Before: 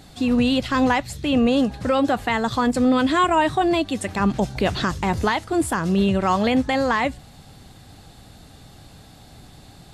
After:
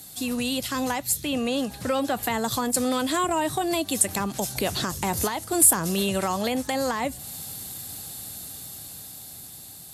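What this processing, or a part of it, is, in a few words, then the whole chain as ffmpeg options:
FM broadcast chain: -filter_complex "[0:a]highpass=75,dynaudnorm=f=830:g=5:m=11.5dB,acrossover=split=460|1000[a][b][c];[a]acompressor=threshold=-20dB:ratio=4[d];[b]acompressor=threshold=-18dB:ratio=4[e];[c]acompressor=threshold=-27dB:ratio=4[f];[d][e][f]amix=inputs=3:normalize=0,aemphasis=mode=production:type=50fm,alimiter=limit=-8dB:level=0:latency=1:release=439,asoftclip=type=hard:threshold=-9.5dB,lowpass=f=15k:w=0.5412,lowpass=f=15k:w=1.3066,aemphasis=mode=production:type=50fm,asettb=1/sr,asplit=3[g][h][i];[g]atrim=end=1.234[j];[h]atrim=start=1.23:end=2.23,asetpts=PTS-STARTPTS,afade=t=in:d=0.004:c=qsin,afade=t=out:st=0.996:d=0.004:c=qsin,acrossover=split=4500[k][l];[l]acompressor=threshold=-35dB:ratio=4:attack=1:release=60[m];[k][m]amix=inputs=2:normalize=0[n];[i]atrim=start=2.226[o];[j][n]acrossfade=d=0.004:c1=hsin:c2=qsin[p];[p][o]acrossfade=d=0.004:c1=qsin:c2=hsin,volume=-6.5dB"

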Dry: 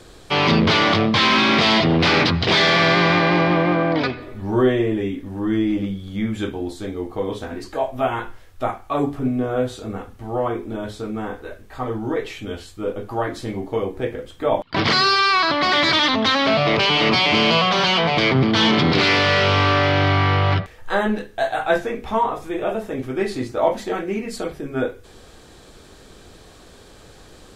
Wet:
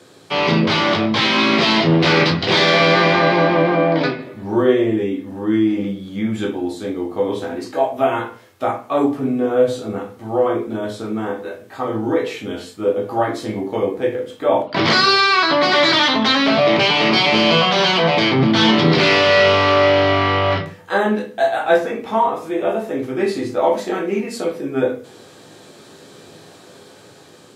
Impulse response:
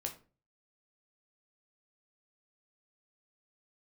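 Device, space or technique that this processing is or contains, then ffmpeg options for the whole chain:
far laptop microphone: -filter_complex "[1:a]atrim=start_sample=2205[a];[0:a][a]afir=irnorm=-1:irlink=0,highpass=f=130:w=0.5412,highpass=f=130:w=1.3066,dynaudnorm=f=640:g=5:m=5dB"

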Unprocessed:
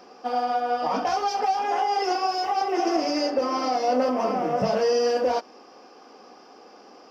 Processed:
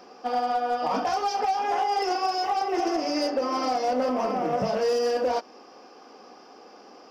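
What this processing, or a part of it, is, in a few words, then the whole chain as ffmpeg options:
limiter into clipper: -af "alimiter=limit=-16dB:level=0:latency=1:release=319,asoftclip=type=hard:threshold=-19dB"

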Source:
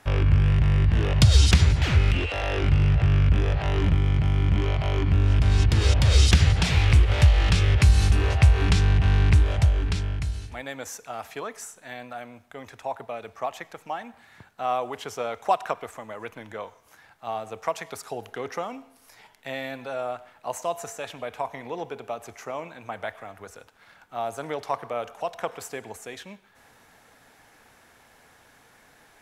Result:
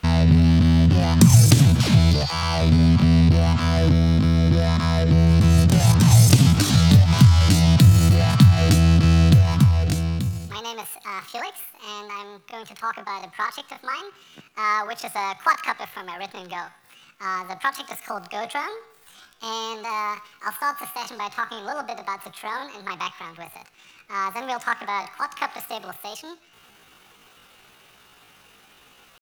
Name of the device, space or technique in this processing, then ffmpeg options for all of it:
chipmunk voice: -filter_complex "[0:a]asettb=1/sr,asplit=3[a][b][c];[a]atrim=end=19.914[d];[b]atrim=start=19.91:end=20.52,asetpts=PTS-STARTPTS,afade=t=in:d=0.004:c=qsin,afade=t=out:st=0.606:d=0.004:c=qsin,highshelf=f=6.5k:g=10[e];[c]atrim=start=20.516[f];[d][e]acrossfade=d=0.004:c1=hsin:c2=qsin[g];[g][f]acrossfade=d=0.004:c1=qsin:c2=hsin,asetrate=74167,aresample=44100,atempo=0.594604,volume=3.5dB"

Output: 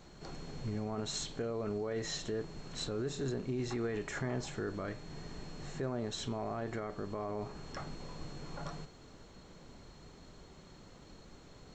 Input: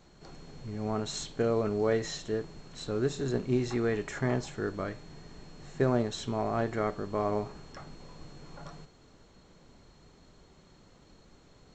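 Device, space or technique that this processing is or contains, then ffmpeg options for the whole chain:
stacked limiters: -af "alimiter=limit=-20.5dB:level=0:latency=1:release=332,alimiter=level_in=2.5dB:limit=-24dB:level=0:latency=1:release=21,volume=-2.5dB,alimiter=level_in=7dB:limit=-24dB:level=0:latency=1:release=327,volume=-7dB,volume=3dB"

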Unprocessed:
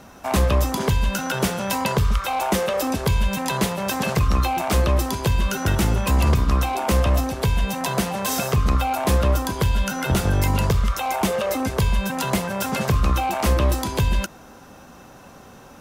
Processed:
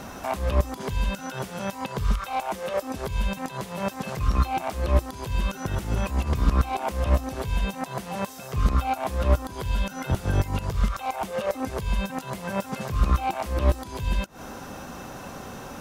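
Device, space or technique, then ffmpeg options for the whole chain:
de-esser from a sidechain: -filter_complex "[0:a]asplit=2[a][b];[b]highpass=5.6k,apad=whole_len=696958[c];[a][c]sidechaincompress=threshold=-51dB:ratio=10:attack=4.6:release=100,volume=6.5dB"

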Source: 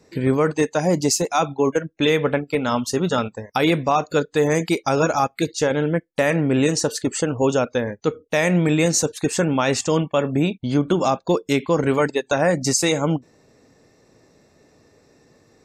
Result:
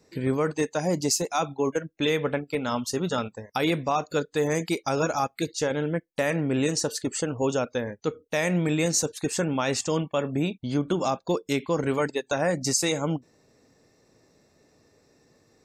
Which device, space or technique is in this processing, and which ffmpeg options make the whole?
presence and air boost: -af "equalizer=f=4.8k:t=o:w=0.77:g=2,highshelf=f=9.5k:g=5.5,volume=-6.5dB"

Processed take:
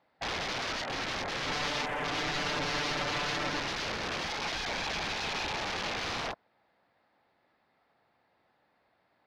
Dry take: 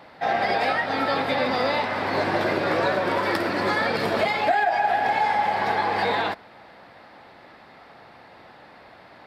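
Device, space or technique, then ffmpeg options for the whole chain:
overflowing digital effects unit: -filter_complex "[0:a]aeval=exprs='(mod(10.6*val(0)+1,2)-1)/10.6':c=same,lowpass=8k,afwtdn=0.0251,asettb=1/sr,asplit=3[a][b][c];[a]atrim=end=1.474[d];[b]atrim=start=1.47:end=3.6,asetpts=PTS-STARTPTS,afade=t=in:d=0.004:c=qsin,afade=t=out:st=2.126:d=0.004:c=qsin,aecho=1:1:6.8:0.82,atrim=end_sample=93933[e];[c]atrim=start=3.596[f];[d][e]acrossfade=d=0.004:c1=hsin:c2=qsin[g];[g][f]acrossfade=d=0.004:c1=qsin:c2=hsin,volume=-7.5dB"

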